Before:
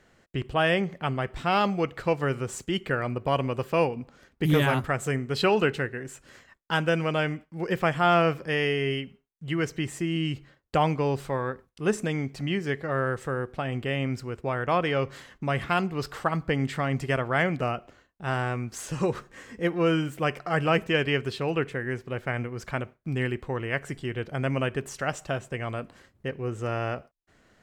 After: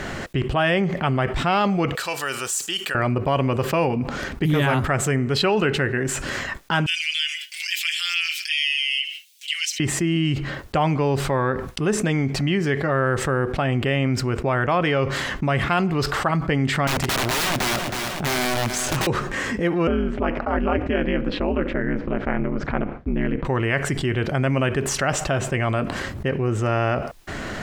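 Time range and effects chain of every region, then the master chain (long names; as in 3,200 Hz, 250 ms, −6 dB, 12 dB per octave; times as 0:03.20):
0:01.95–0:02.95: first difference + notch filter 2,100 Hz, Q 7.3
0:06.86–0:09.80: Butterworth high-pass 2,600 Hz + comb filter 5.9 ms, depth 94%
0:16.87–0:19.07: mu-law and A-law mismatch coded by A + wrap-around overflow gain 27.5 dB + repeating echo 320 ms, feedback 37%, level −15.5 dB
0:19.87–0:23.45: ring modulation 100 Hz + head-to-tape spacing loss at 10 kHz 35 dB
whole clip: high-shelf EQ 6,000 Hz −6 dB; notch filter 480 Hz, Q 12; envelope flattener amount 70%; level +1 dB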